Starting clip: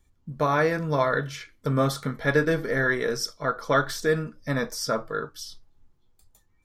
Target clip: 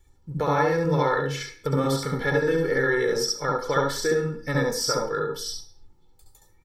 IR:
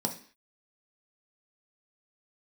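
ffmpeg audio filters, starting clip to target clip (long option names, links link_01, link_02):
-filter_complex "[0:a]aecho=1:1:2.3:0.78,acompressor=threshold=-27dB:ratio=2.5,asplit=2[link_01][link_02];[1:a]atrim=start_sample=2205,adelay=68[link_03];[link_02][link_03]afir=irnorm=-1:irlink=0,volume=-6dB[link_04];[link_01][link_04]amix=inputs=2:normalize=0,volume=1.5dB"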